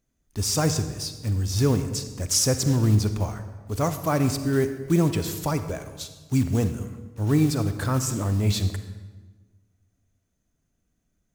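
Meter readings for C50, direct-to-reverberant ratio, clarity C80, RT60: 10.0 dB, 9.5 dB, 11.5 dB, 1.3 s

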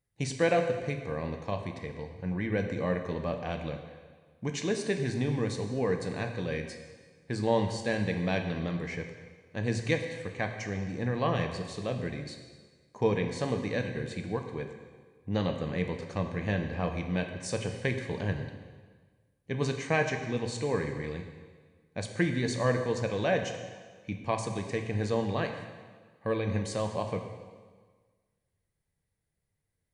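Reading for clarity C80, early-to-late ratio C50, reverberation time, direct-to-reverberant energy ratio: 8.0 dB, 7.0 dB, 1.5 s, 4.5 dB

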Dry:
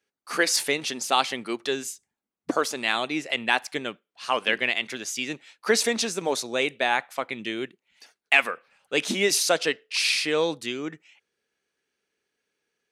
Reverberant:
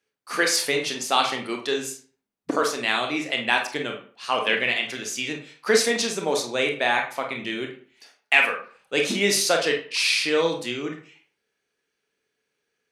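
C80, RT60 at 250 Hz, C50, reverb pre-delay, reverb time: 12.0 dB, 0.40 s, 7.5 dB, 26 ms, 0.45 s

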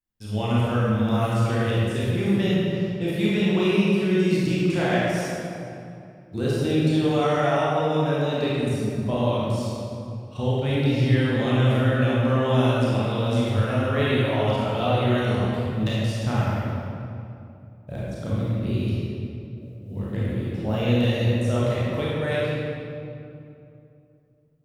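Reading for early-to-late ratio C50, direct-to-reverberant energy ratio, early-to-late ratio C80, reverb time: -4.5 dB, -8.0 dB, -2.0 dB, 2.6 s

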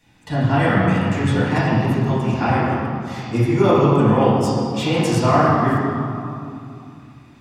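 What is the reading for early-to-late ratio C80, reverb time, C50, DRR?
-0.5 dB, 2.6 s, -2.5 dB, -11.0 dB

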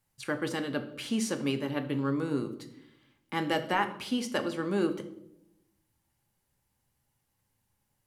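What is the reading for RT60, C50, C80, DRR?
0.80 s, 12.0 dB, 15.0 dB, 7.0 dB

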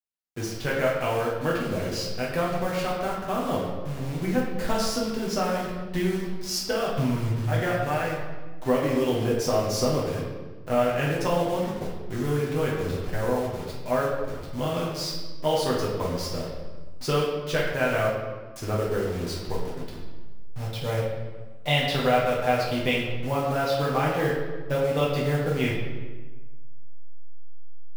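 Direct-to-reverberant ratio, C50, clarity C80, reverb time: -5.5 dB, 1.5 dB, 4.0 dB, 1.3 s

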